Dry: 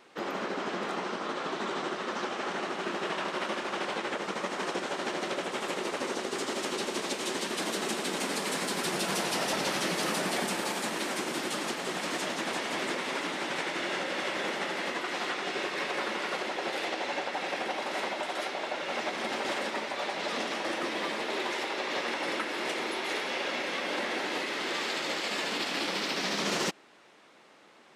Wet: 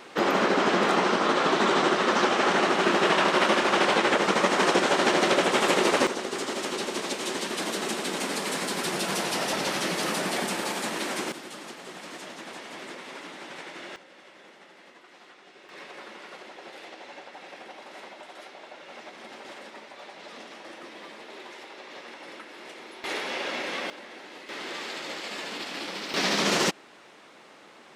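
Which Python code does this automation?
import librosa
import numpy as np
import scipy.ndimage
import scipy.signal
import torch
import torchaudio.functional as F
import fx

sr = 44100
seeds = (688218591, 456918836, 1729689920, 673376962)

y = fx.gain(x, sr, db=fx.steps((0.0, 11.0), (6.07, 2.0), (11.32, -8.0), (13.96, -19.0), (15.69, -11.0), (23.04, 1.0), (23.9, -12.0), (24.49, -3.5), (26.14, 6.0)))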